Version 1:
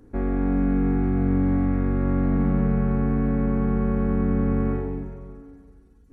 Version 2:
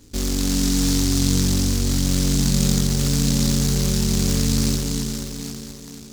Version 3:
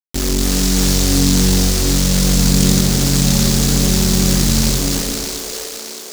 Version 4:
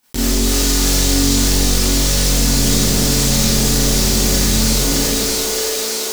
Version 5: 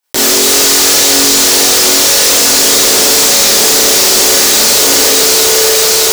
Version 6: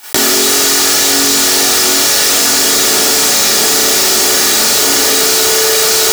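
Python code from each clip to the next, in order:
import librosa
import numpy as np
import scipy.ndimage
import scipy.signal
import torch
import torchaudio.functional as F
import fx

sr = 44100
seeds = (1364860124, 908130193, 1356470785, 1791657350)

y1 = fx.peak_eq(x, sr, hz=93.0, db=4.0, octaves=1.7)
y1 = fx.echo_tape(y1, sr, ms=482, feedback_pct=54, wet_db=-6.0, lp_hz=1800.0, drive_db=6.0, wow_cents=10)
y1 = fx.noise_mod_delay(y1, sr, seeds[0], noise_hz=5500.0, depth_ms=0.33)
y2 = fx.fade_out_tail(y1, sr, length_s=1.18)
y2 = np.where(np.abs(y2) >= 10.0 ** (-22.5 / 20.0), y2, 0.0)
y2 = fx.echo_split(y2, sr, split_hz=390.0, low_ms=133, high_ms=620, feedback_pct=52, wet_db=-5)
y2 = y2 * librosa.db_to_amplitude(5.5)
y3 = fx.rev_schroeder(y2, sr, rt60_s=0.44, comb_ms=26, drr_db=-10.0)
y3 = fx.env_flatten(y3, sr, amount_pct=50)
y3 = y3 * librosa.db_to_amplitude(-10.0)
y4 = scipy.signal.sosfilt(scipy.signal.butter(4, 370.0, 'highpass', fs=sr, output='sos'), y3)
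y4 = fx.leveller(y4, sr, passes=5)
y5 = fx.peak_eq(y4, sr, hz=1500.0, db=3.5, octaves=0.77)
y5 = fx.notch_comb(y5, sr, f0_hz=520.0)
y5 = fx.env_flatten(y5, sr, amount_pct=100)
y5 = y5 * librosa.db_to_amplitude(-2.0)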